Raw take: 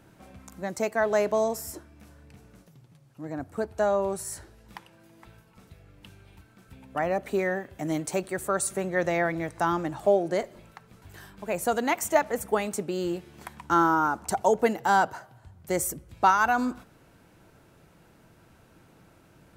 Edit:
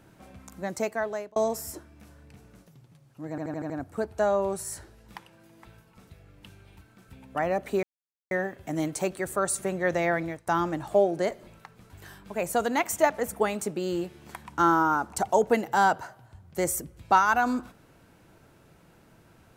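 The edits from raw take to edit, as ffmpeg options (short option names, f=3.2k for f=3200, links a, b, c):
-filter_complex "[0:a]asplit=9[a][b][c][d][e][f][g][h][i];[a]atrim=end=1.36,asetpts=PTS-STARTPTS,afade=t=out:st=0.77:d=0.59[j];[b]atrim=start=1.36:end=3.382,asetpts=PTS-STARTPTS,afade=t=in:d=0.004:c=hsin[k];[c]atrim=start=3.298:end=3.382[l];[d]atrim=start=3.298:end=3.382[m];[e]atrim=start=3.298:end=3.382[n];[f]atrim=start=3.298:end=3.382[o];[g]atrim=start=3.298:end=7.43,asetpts=PTS-STARTPTS,afade=t=out:st=4.128:d=0.004:c=hsin,apad=pad_dur=0.48[p];[h]atrim=start=7.43:end=9.59,asetpts=PTS-STARTPTS,afade=t=in:d=0.004:c=hsin,afade=t=out:st=1.91:d=0.25:silence=0.0891251[q];[i]atrim=start=9.59,asetpts=PTS-STARTPTS,afade=t=in:d=0.004:c=hsin:silence=0.0891251[r];[j][k]concat=n=2:v=0:a=1[s];[s][l]acrossfade=d=0.004:c1=hsin:c2=hsin[t];[t][m]acrossfade=d=0.004:c1=hsin:c2=hsin[u];[u][n]acrossfade=d=0.004:c1=hsin:c2=hsin[v];[v][o]acrossfade=d=0.004:c1=hsin:c2=hsin[w];[p][q][r]concat=n=3:v=0:a=1[x];[w][x]acrossfade=d=0.004:c1=hsin:c2=hsin"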